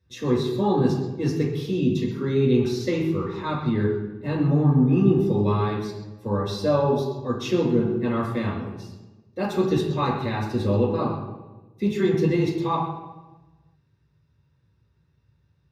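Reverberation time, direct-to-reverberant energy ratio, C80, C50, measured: 1.1 s, -5.0 dB, 5.5 dB, 3.5 dB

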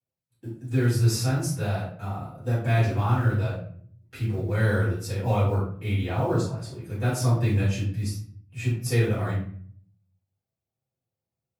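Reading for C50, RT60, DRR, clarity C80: 3.5 dB, 0.55 s, -11.5 dB, 8.0 dB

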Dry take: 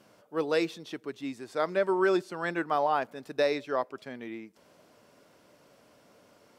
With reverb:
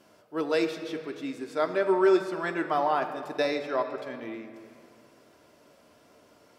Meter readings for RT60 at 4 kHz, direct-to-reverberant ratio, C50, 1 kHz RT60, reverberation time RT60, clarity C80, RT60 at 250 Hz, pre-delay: 1.7 s, 4.5 dB, 8.5 dB, 2.2 s, 2.4 s, 10.0 dB, 2.6 s, 3 ms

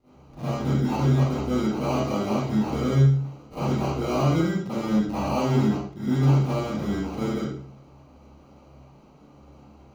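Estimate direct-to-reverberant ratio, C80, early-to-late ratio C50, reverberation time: -16.0 dB, 0.5 dB, -6.5 dB, 0.50 s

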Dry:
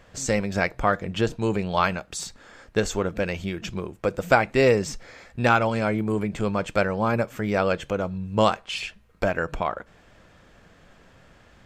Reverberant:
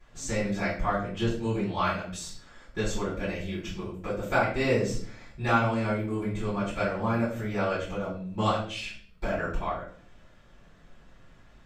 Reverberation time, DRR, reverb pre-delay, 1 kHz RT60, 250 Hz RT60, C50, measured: 0.50 s, -12.0 dB, 3 ms, 0.40 s, 0.80 s, 5.0 dB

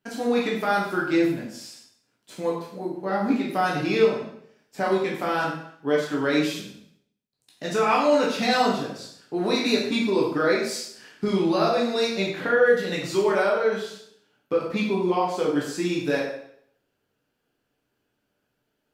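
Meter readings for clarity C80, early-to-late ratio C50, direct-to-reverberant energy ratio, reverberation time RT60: 7.0 dB, 3.5 dB, -4.5 dB, 0.65 s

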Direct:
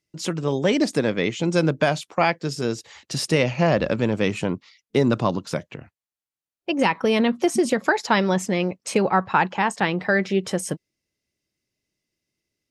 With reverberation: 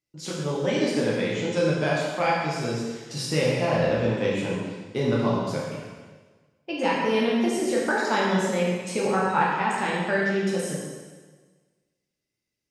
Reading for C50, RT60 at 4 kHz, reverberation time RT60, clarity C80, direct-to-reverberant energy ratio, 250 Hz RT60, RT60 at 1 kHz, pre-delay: -0.5 dB, 1.3 s, 1.4 s, 1.5 dB, -6.0 dB, 1.4 s, 1.4 s, 5 ms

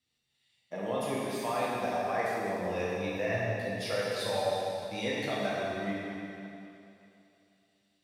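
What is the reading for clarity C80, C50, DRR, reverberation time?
-2.0 dB, -3.5 dB, -7.5 dB, 2.9 s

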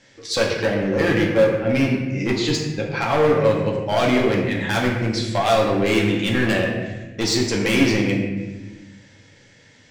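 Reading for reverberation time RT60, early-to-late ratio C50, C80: 1.2 s, 3.0 dB, 5.0 dB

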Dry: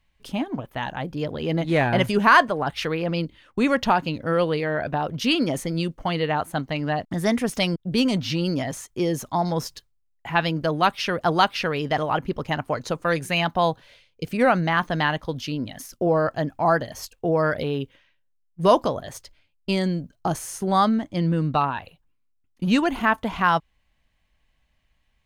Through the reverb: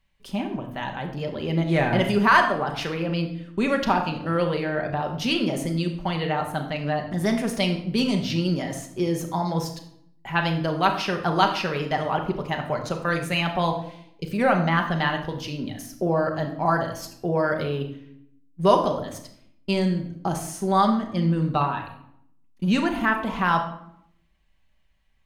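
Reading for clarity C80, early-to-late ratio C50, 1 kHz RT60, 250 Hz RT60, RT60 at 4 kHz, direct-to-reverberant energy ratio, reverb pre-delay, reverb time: 11.5 dB, 8.5 dB, 0.70 s, 1.0 s, 0.50 s, 3.0 dB, 5 ms, 0.75 s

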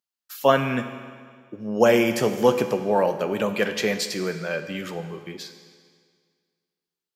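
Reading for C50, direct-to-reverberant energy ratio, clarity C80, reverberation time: 9.0 dB, 7.5 dB, 10.5 dB, 1.9 s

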